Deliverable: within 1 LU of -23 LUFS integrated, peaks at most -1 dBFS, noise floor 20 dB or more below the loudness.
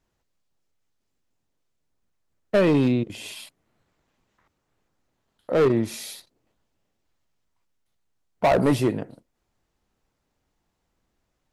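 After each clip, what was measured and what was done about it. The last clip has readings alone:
clipped samples 1.0%; clipping level -14.0 dBFS; loudness -22.5 LUFS; peak level -14.0 dBFS; loudness target -23.0 LUFS
-> clip repair -14 dBFS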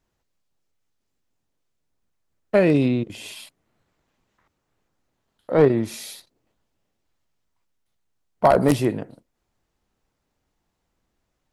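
clipped samples 0.0%; loudness -20.0 LUFS; peak level -5.0 dBFS; loudness target -23.0 LUFS
-> trim -3 dB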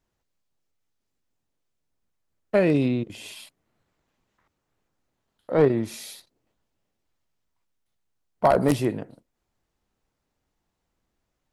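loudness -23.0 LUFS; peak level -8.0 dBFS; noise floor -79 dBFS

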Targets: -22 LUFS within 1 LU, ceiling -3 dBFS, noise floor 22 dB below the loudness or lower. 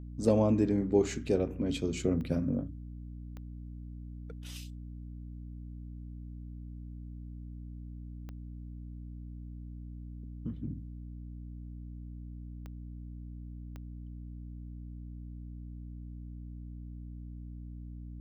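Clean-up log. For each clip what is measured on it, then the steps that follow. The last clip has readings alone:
clicks found 5; hum 60 Hz; highest harmonic 300 Hz; hum level -41 dBFS; loudness -37.5 LUFS; peak level -13.0 dBFS; loudness target -22.0 LUFS
-> de-click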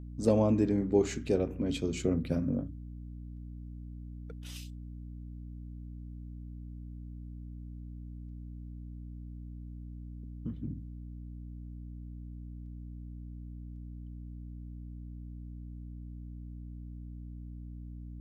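clicks found 0; hum 60 Hz; highest harmonic 300 Hz; hum level -41 dBFS
-> hum notches 60/120/180/240/300 Hz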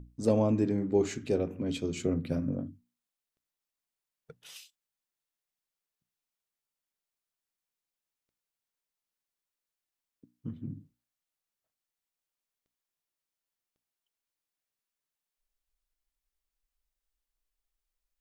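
hum not found; loudness -30.5 LUFS; peak level -14.0 dBFS; loudness target -22.0 LUFS
-> trim +8.5 dB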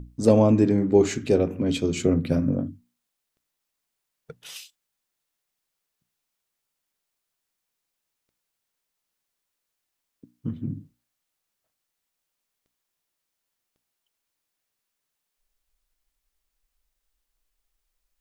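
loudness -22.0 LUFS; peak level -5.5 dBFS; noise floor -82 dBFS

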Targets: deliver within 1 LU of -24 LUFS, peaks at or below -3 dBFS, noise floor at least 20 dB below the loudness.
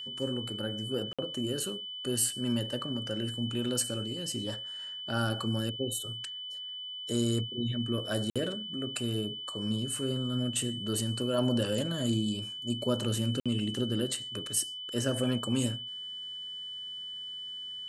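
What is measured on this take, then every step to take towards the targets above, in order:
dropouts 3; longest dropout 56 ms; steady tone 3 kHz; tone level -38 dBFS; loudness -32.5 LUFS; peak level -15.5 dBFS; loudness target -24.0 LUFS
-> interpolate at 1.13/8.30/13.40 s, 56 ms; band-stop 3 kHz, Q 30; trim +8.5 dB

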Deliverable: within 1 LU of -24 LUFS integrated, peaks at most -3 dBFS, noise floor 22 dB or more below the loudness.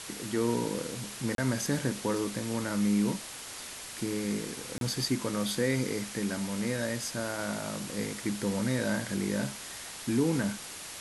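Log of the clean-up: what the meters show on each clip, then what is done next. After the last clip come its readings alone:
dropouts 2; longest dropout 32 ms; noise floor -43 dBFS; noise floor target -54 dBFS; loudness -32.0 LUFS; peak level -16.0 dBFS; loudness target -24.0 LUFS
-> interpolate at 1.35/4.78 s, 32 ms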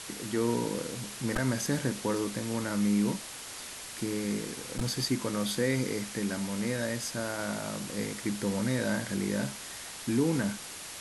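dropouts 0; noise floor -43 dBFS; noise floor target -54 dBFS
-> noise reduction 11 dB, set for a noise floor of -43 dBFS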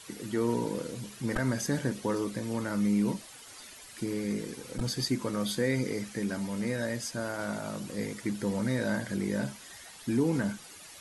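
noise floor -49 dBFS; noise floor target -54 dBFS
-> noise reduction 6 dB, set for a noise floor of -49 dBFS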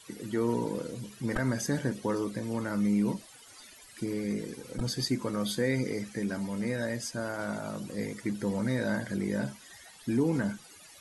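noise floor -53 dBFS; noise floor target -54 dBFS
-> noise reduction 6 dB, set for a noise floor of -53 dBFS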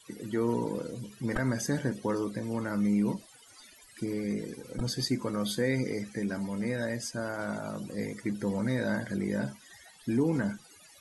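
noise floor -56 dBFS; loudness -32.0 LUFS; peak level -16.5 dBFS; loudness target -24.0 LUFS
-> trim +8 dB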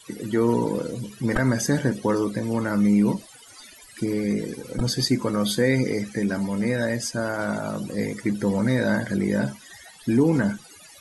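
loudness -24.0 LUFS; peak level -8.5 dBFS; noise floor -48 dBFS

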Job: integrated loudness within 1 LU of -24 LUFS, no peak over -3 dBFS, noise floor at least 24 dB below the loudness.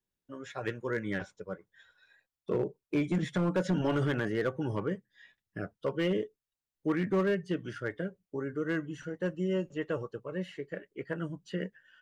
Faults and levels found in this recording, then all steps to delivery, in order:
clipped samples 0.8%; clipping level -22.5 dBFS; loudness -34.0 LUFS; peak level -22.5 dBFS; loudness target -24.0 LUFS
-> clip repair -22.5 dBFS; trim +10 dB

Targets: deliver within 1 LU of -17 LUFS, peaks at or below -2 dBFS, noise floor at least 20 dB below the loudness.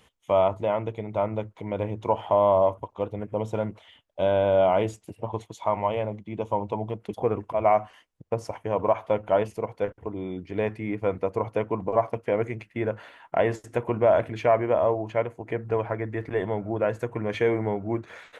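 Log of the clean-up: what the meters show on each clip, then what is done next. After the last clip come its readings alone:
loudness -26.5 LUFS; peak level -10.0 dBFS; loudness target -17.0 LUFS
-> trim +9.5 dB; peak limiter -2 dBFS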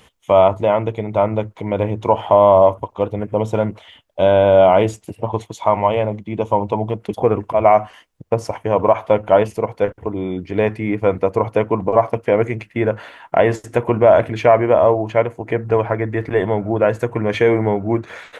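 loudness -17.5 LUFS; peak level -2.0 dBFS; noise floor -54 dBFS

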